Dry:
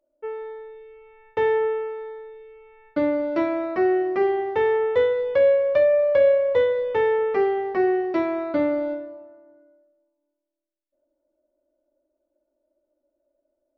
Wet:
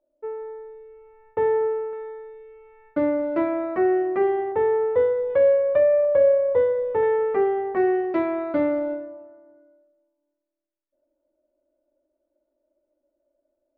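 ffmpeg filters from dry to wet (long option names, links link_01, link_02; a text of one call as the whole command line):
ffmpeg -i in.wav -af "asetnsamples=nb_out_samples=441:pad=0,asendcmd='1.93 lowpass f 2000;4.52 lowpass f 1200;5.3 lowpass f 1600;6.05 lowpass f 1200;7.03 lowpass f 1700;7.77 lowpass f 2700;8.79 lowpass f 2100',lowpass=1200" out.wav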